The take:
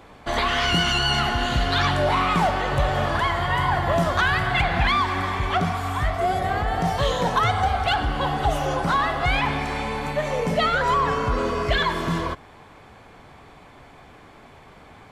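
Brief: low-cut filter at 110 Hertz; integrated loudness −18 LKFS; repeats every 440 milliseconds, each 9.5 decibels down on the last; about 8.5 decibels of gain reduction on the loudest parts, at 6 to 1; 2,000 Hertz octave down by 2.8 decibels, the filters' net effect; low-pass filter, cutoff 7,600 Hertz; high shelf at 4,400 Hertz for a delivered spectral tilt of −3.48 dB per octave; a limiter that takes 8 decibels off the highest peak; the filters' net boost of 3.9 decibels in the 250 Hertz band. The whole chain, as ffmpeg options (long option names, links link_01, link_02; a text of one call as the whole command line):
ffmpeg -i in.wav -af "highpass=110,lowpass=7600,equalizer=frequency=250:width_type=o:gain=6,equalizer=frequency=2000:width_type=o:gain=-5,highshelf=frequency=4400:gain=6,acompressor=threshold=-25dB:ratio=6,alimiter=limit=-23dB:level=0:latency=1,aecho=1:1:440|880|1320|1760:0.335|0.111|0.0365|0.012,volume=13dB" out.wav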